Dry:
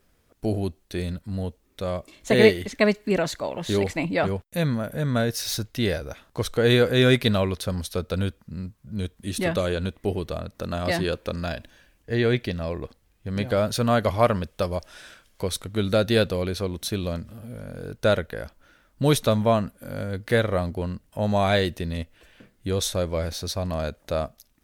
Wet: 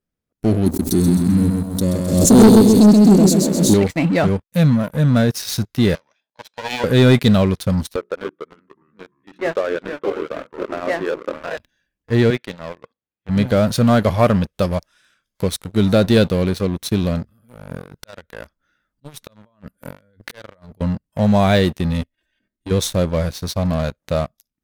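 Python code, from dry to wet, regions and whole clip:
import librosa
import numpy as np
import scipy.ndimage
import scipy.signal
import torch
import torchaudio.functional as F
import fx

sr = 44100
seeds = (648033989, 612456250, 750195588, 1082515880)

y = fx.chain(x, sr, fx.curve_eq(hz=(140.0, 270.0, 2000.0, 4400.0, 7800.0), db=(0, 9, -27, 4, 13)),
    fx.echo_feedback(ms=130, feedback_pct=51, wet_db=-3.5),
    fx.pre_swell(db_per_s=59.0), at=(0.66, 3.74))
y = fx.chain(y, sr, fx.lower_of_two(delay_ms=1.2),
    fx.bandpass_edges(low_hz=470.0, high_hz=4200.0),
    fx.peak_eq(hz=1300.0, db=-9.0, octaves=1.4), at=(5.95, 6.84))
y = fx.chain(y, sr, fx.cheby1_bandpass(low_hz=360.0, high_hz=1800.0, order=2),
    fx.hum_notches(base_hz=60, count=7),
    fx.echo_pitch(ms=270, semitones=-2, count=3, db_per_echo=-6.0), at=(7.96, 11.57))
y = fx.chain(y, sr, fx.highpass(hz=480.0, slope=6),
    fx.air_absorb(metres=140.0), at=(12.3, 13.29))
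y = fx.chain(y, sr, fx.auto_swell(attack_ms=693.0),
    fx.over_compress(threshold_db=-38.0, ratio=-1.0), at=(17.7, 20.81))
y = fx.chain(y, sr, fx.comb(ms=3.2, depth=0.67),
    fx.level_steps(step_db=11), at=(22.01, 22.71))
y = fx.noise_reduce_blind(y, sr, reduce_db=9)
y = fx.peak_eq(y, sr, hz=180.0, db=8.0, octaves=1.7)
y = fx.leveller(y, sr, passes=3)
y = F.gain(torch.from_numpy(y), -7.0).numpy()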